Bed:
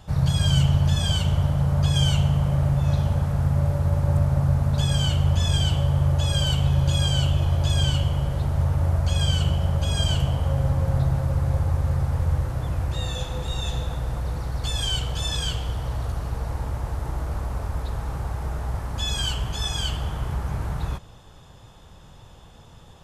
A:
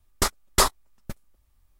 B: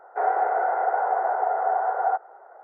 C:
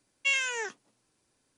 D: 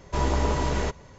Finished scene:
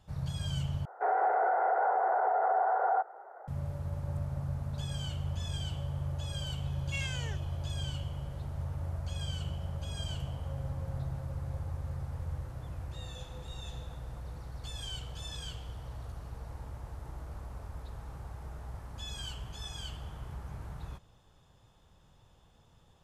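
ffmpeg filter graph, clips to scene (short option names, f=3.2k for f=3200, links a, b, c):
-filter_complex "[0:a]volume=-15dB[a];[2:a]alimiter=limit=-19.5dB:level=0:latency=1:release=28[b];[a]asplit=2[c][d];[c]atrim=end=0.854[e];[b]atrim=end=2.63,asetpts=PTS-STARTPTS,volume=-1.5dB[f];[d]atrim=start=3.476[g];[3:a]atrim=end=1.57,asetpts=PTS-STARTPTS,volume=-12.5dB,afade=t=in:d=0.004:c=hsin,afade=t=out:st=1.566:d=0.004:c=hsin,adelay=6670[h];[e][f]acrossfade=d=0.004:c1=hsin:c2=hsin[i];[i][g]acrossfade=d=0.004:c1=hsin:c2=hsin[j];[j][h]amix=inputs=2:normalize=0"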